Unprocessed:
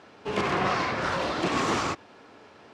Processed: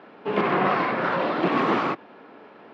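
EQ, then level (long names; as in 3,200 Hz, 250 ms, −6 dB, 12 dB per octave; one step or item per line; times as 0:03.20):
high-pass filter 160 Hz 24 dB per octave
high-frequency loss of the air 390 metres
+6.0 dB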